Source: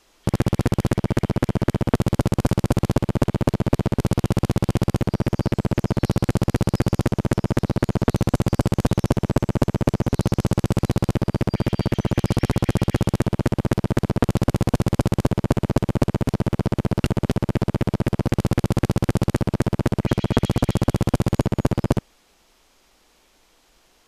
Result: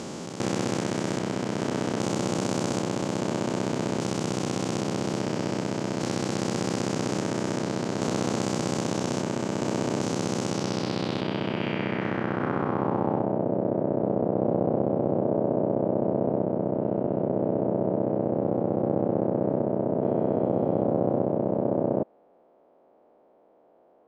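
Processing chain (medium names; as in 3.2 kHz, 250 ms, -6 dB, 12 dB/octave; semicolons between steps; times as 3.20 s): spectrogram pixelated in time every 400 ms; high-pass 220 Hz 12 dB/octave; low-pass sweep 6.9 kHz -> 620 Hz, 10.44–13.51 s; trim +3 dB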